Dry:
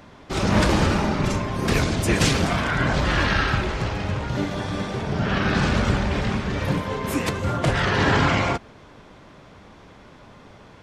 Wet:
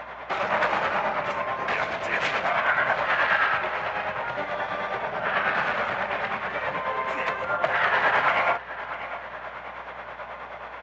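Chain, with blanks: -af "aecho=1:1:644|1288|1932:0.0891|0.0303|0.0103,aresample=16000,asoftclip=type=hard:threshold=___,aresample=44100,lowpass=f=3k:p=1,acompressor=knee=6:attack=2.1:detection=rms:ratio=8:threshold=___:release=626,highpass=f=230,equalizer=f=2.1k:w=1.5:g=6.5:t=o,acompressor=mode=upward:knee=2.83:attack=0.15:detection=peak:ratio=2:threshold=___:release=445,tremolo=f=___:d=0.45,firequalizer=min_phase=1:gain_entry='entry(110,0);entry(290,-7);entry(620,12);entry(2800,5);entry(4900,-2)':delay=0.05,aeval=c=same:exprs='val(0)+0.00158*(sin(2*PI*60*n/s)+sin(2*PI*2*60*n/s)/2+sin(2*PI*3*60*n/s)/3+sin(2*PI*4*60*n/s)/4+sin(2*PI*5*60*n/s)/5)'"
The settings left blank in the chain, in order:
-17dB, -26dB, -33dB, 9.3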